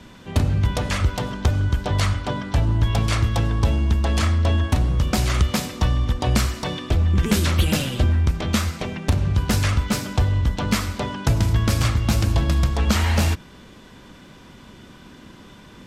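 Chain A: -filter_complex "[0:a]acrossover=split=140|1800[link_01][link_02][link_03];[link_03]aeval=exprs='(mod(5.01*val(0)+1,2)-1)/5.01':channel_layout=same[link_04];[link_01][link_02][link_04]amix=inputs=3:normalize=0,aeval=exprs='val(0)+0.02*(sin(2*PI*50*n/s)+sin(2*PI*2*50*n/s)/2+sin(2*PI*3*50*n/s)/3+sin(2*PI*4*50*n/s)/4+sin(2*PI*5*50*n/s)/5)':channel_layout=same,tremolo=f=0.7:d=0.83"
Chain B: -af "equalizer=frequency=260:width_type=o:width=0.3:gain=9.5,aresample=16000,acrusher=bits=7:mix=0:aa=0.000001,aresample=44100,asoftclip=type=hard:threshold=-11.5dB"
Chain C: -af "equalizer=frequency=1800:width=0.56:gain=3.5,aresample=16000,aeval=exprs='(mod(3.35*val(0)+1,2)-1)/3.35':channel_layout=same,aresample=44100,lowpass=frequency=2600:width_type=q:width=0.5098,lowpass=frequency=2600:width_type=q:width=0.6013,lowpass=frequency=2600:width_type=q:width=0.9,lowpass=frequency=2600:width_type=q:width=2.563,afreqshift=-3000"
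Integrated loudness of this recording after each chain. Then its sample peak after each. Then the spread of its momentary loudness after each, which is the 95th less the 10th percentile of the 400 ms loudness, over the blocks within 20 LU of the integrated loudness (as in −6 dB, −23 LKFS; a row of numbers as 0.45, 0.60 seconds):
−25.0, −21.5, −17.0 LKFS; −4.5, −11.5, −2.5 dBFS; 16, 4, 5 LU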